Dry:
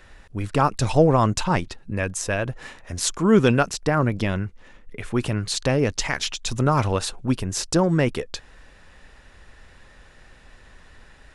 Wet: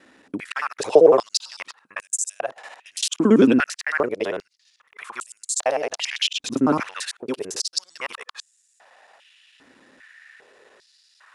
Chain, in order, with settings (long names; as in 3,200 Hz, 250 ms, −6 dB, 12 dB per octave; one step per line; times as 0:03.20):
reversed piece by piece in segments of 56 ms
high-pass on a step sequencer 2.5 Hz 270–7,500 Hz
level −2.5 dB